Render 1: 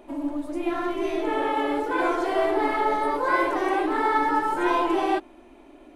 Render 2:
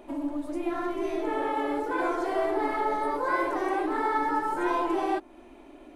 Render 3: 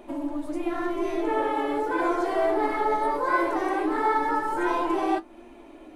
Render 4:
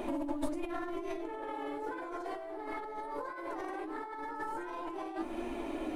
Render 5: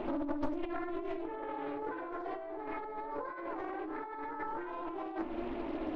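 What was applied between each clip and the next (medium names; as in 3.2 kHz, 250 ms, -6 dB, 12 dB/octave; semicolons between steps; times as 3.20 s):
in parallel at 0 dB: compression, threshold -32 dBFS, peak gain reduction 13.5 dB; on the sum: dynamic bell 3 kHz, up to -5 dB, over -44 dBFS, Q 1.5; trim -6 dB
flange 0.91 Hz, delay 8.5 ms, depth 1.2 ms, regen +60%; trim +6.5 dB
compressor with a negative ratio -37 dBFS, ratio -1; trim -2 dB
distance through air 290 m; loudspeaker Doppler distortion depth 0.51 ms; trim +1 dB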